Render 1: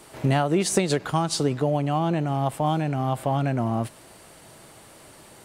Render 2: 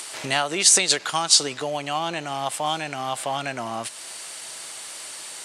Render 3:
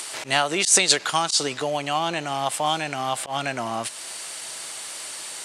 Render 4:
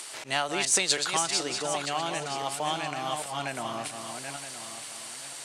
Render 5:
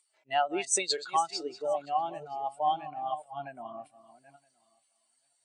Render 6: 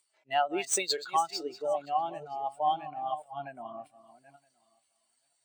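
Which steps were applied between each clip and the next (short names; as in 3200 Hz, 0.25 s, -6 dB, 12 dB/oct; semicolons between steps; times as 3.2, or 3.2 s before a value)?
weighting filter ITU-R 468; in parallel at 0 dB: upward compressor, threshold -27 dBFS; on the sum: gain -4.5 dB
auto swell 0.105 s; gain +2 dB
regenerating reverse delay 0.485 s, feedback 50%, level -6 dB; added harmonics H 6 -39 dB, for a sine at -2.5 dBFS; gain -7 dB
spectral expander 2.5:1; gain -4 dB
median filter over 3 samples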